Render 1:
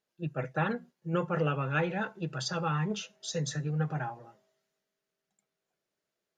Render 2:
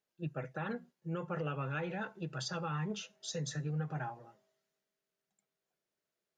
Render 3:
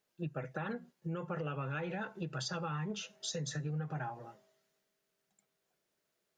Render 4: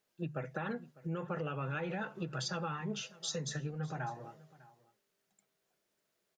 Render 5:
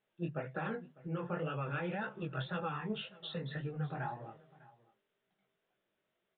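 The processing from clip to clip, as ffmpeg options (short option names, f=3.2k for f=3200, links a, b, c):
-af "alimiter=level_in=0.5dB:limit=-24dB:level=0:latency=1:release=148,volume=-0.5dB,volume=-4dB"
-af "acompressor=threshold=-44dB:ratio=3,volume=6.5dB"
-af "bandreject=f=50:t=h:w=6,bandreject=f=100:t=h:w=6,bandreject=f=150:t=h:w=6,aecho=1:1:601:0.0891,volume=1dB"
-af "flanger=delay=15.5:depth=7.8:speed=1.9,aresample=8000,aresample=44100,volume=3dB"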